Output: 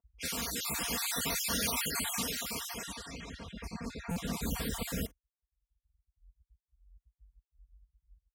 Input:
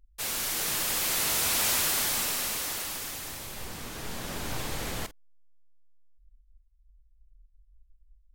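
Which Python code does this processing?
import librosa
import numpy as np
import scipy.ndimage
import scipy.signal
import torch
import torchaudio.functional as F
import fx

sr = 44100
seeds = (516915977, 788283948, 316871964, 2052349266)

y = fx.spec_dropout(x, sr, seeds[0], share_pct=39)
y = fx.high_shelf(y, sr, hz=11000.0, db=fx.steps((0.0, -4.5), (4.32, 8.5)))
y = fx.env_lowpass(y, sr, base_hz=1000.0, full_db=-33.0)
y = fx.dereverb_blind(y, sr, rt60_s=1.4)
y = scipy.signal.sosfilt(scipy.signal.butter(4, 44.0, 'highpass', fs=sr, output='sos'), y)
y = fx.peak_eq(y, sr, hz=110.0, db=11.5, octaves=2.7)
y = fx.notch(y, sr, hz=790.0, q=12.0)
y = y + 0.95 * np.pad(y, (int(4.3 * sr / 1000.0), 0))[:len(y)]
y = fx.buffer_glitch(y, sr, at_s=(4.11,), block=256, repeats=8)
y = F.gain(torch.from_numpy(y), -3.5).numpy()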